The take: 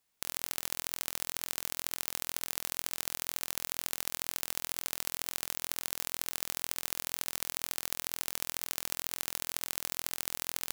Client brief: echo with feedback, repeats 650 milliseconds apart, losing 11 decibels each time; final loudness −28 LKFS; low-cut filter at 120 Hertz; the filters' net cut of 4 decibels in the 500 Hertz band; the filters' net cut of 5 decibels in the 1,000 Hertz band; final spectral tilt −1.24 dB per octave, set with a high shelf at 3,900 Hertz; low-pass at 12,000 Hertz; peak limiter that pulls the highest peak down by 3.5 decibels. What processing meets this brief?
high-pass filter 120 Hz
low-pass filter 12,000 Hz
parametric band 500 Hz −3.5 dB
parametric band 1,000 Hz −5 dB
high-shelf EQ 3,900 Hz −7 dB
brickwall limiter −17.5 dBFS
repeating echo 650 ms, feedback 28%, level −11 dB
level +16.5 dB

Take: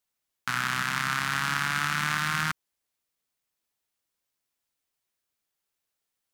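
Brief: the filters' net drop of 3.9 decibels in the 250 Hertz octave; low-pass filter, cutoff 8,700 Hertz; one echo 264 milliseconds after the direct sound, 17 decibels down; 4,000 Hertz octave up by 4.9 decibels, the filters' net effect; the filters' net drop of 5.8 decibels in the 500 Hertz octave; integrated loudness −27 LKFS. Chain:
low-pass filter 8,700 Hz
parametric band 250 Hz −5.5 dB
parametric band 500 Hz −7.5 dB
parametric band 4,000 Hz +6.5 dB
single-tap delay 264 ms −17 dB
level −1 dB

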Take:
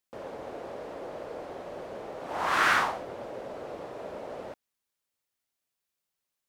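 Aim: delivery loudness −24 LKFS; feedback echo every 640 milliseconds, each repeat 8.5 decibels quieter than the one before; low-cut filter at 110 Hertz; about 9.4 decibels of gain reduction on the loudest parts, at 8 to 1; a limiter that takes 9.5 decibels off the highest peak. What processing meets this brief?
high-pass filter 110 Hz
downward compressor 8 to 1, threshold −29 dBFS
brickwall limiter −30.5 dBFS
repeating echo 640 ms, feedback 38%, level −8.5 dB
level +16 dB

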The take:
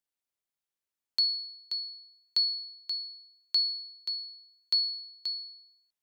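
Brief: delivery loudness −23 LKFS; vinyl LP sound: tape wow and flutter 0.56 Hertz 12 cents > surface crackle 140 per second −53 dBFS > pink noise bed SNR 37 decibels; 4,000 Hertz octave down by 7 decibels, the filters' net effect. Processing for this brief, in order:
parametric band 4,000 Hz −7.5 dB
tape wow and flutter 0.56 Hz 12 cents
surface crackle 140 per second −53 dBFS
pink noise bed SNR 37 dB
level +14 dB

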